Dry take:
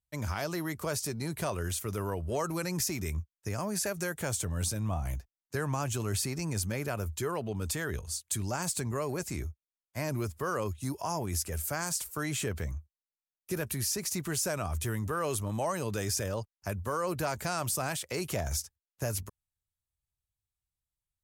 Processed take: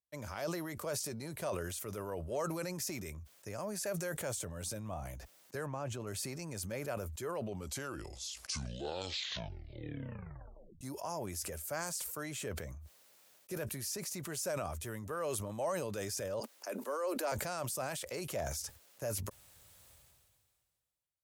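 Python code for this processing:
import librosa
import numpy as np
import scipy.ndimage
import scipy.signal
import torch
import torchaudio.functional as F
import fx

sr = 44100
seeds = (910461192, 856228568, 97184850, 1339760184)

y = fx.lowpass(x, sr, hz=1800.0, slope=6, at=(5.66, 6.07))
y = fx.steep_highpass(y, sr, hz=230.0, slope=72, at=(16.4, 17.32))
y = fx.edit(y, sr, fx.tape_stop(start_s=7.38, length_s=3.43), tone=tone)
y = fx.highpass(y, sr, hz=160.0, slope=6)
y = fx.peak_eq(y, sr, hz=560.0, db=7.5, octaves=0.46)
y = fx.sustainer(y, sr, db_per_s=30.0)
y = y * 10.0 ** (-8.0 / 20.0)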